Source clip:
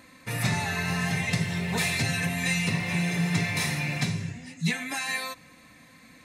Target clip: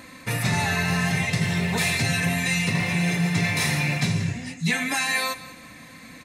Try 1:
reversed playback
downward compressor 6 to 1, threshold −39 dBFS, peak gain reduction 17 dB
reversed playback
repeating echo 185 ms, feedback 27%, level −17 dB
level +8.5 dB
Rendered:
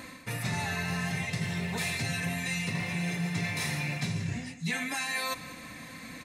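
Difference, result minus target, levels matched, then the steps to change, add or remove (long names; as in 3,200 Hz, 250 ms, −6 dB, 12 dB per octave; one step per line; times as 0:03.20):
downward compressor: peak gain reduction +9 dB
change: downward compressor 6 to 1, threshold −28.5 dBFS, peak gain reduction 8 dB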